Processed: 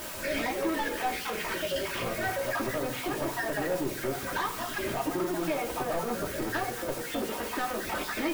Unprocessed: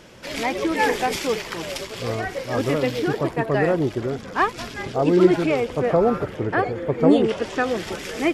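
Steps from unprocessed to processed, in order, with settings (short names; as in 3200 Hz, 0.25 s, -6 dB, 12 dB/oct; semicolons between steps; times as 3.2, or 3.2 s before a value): random spectral dropouts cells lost 30%; LPF 3500 Hz; bell 1200 Hz +7 dB 2.3 oct; compressor 4:1, threshold -28 dBFS, peak gain reduction 17.5 dB; added noise white -43 dBFS; soft clip -29.5 dBFS, distortion -10 dB; reverb RT60 0.80 s, pre-delay 3 ms, DRR 0 dB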